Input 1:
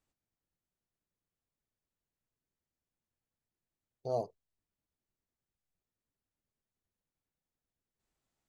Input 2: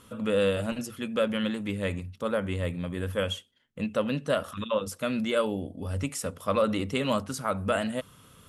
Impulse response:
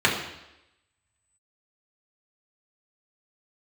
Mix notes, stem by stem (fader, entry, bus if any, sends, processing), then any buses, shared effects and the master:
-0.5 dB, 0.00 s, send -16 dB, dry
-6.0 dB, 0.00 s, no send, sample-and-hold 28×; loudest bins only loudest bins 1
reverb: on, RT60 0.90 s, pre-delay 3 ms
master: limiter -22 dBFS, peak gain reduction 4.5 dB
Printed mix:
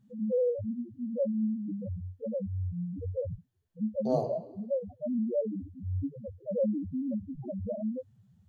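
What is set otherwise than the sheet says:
stem 2 -6.0 dB -> +4.5 dB; master: missing limiter -22 dBFS, peak gain reduction 4.5 dB

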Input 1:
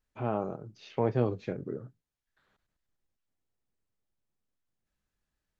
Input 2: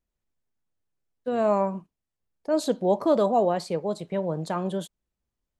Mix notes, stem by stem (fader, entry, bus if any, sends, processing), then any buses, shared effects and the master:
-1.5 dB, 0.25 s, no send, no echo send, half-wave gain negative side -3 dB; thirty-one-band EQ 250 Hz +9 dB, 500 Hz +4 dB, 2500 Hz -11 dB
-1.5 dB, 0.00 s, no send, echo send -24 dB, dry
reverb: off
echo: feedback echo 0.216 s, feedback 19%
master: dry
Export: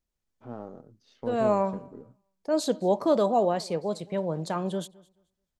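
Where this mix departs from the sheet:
stem 1 -1.5 dB -> -10.0 dB; master: extra bell 5600 Hz +4 dB 1.2 oct

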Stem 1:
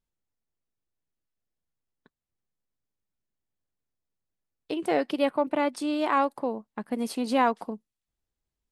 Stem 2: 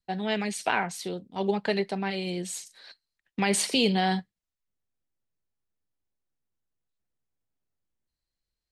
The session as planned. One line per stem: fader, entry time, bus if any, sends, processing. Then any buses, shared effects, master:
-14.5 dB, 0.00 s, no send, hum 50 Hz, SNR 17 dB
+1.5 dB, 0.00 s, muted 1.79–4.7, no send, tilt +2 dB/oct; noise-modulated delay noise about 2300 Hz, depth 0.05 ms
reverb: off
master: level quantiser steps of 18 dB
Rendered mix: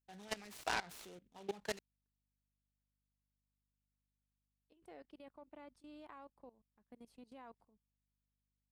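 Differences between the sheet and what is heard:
stem 1 -14.5 dB -> -26.0 dB; stem 2 +1.5 dB -> -10.0 dB

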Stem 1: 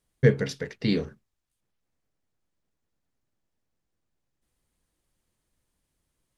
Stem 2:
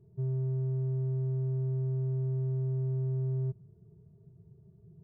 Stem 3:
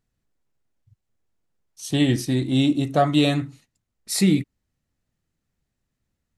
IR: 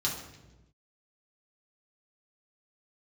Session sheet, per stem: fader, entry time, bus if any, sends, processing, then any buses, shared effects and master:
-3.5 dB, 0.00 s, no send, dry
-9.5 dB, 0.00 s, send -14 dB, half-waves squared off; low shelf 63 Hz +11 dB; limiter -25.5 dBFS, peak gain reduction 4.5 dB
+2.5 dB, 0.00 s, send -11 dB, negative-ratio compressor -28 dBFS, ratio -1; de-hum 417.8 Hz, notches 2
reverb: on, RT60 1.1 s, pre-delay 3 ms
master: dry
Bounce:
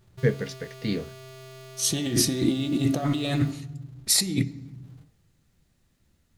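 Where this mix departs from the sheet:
stem 2: send -14 dB -> -6 dB; reverb return -6.5 dB

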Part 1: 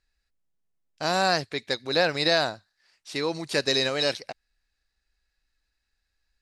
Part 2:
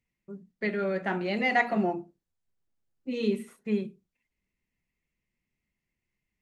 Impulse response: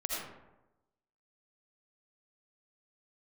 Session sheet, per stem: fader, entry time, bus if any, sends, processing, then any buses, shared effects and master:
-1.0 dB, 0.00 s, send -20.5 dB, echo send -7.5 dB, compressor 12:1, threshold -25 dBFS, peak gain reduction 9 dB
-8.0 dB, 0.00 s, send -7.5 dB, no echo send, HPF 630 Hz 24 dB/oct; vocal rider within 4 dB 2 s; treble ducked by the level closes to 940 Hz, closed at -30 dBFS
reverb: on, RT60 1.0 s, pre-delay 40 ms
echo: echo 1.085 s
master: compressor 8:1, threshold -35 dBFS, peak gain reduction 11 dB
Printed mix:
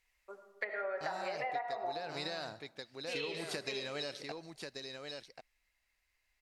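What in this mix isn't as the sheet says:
stem 1 -1.0 dB -> -8.0 dB; stem 2 -8.0 dB -> +4.0 dB

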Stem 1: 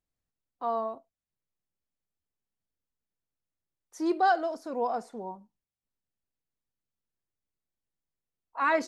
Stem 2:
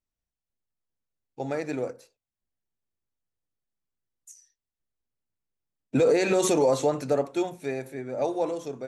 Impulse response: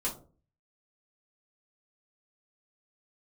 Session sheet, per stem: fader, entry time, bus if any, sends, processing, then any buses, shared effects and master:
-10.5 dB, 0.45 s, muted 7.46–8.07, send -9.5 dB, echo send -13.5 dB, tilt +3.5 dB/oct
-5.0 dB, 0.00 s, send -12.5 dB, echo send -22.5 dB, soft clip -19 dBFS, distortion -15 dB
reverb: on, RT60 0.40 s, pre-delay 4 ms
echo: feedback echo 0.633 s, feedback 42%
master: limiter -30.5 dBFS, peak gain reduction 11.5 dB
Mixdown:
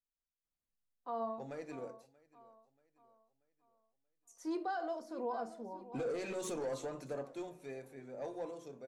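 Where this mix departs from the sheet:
stem 1: missing tilt +3.5 dB/oct; stem 2 -5.0 dB -> -16.0 dB

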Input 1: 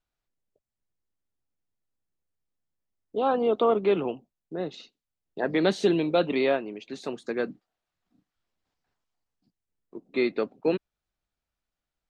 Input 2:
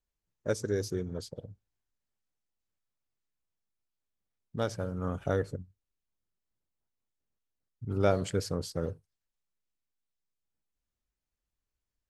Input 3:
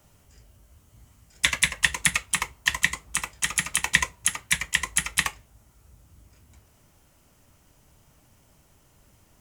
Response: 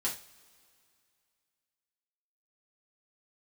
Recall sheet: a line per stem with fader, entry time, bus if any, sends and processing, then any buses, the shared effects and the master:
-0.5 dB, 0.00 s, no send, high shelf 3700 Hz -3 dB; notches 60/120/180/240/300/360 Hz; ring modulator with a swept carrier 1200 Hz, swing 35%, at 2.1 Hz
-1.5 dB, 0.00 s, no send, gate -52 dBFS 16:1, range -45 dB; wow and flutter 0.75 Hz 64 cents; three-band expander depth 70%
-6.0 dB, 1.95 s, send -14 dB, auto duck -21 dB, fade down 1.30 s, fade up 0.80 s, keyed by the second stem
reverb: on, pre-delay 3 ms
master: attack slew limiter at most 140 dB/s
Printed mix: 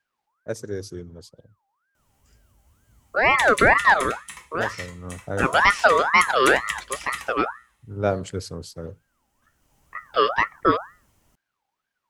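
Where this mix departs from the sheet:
stem 1 -0.5 dB -> +9.0 dB; master: missing attack slew limiter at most 140 dB/s

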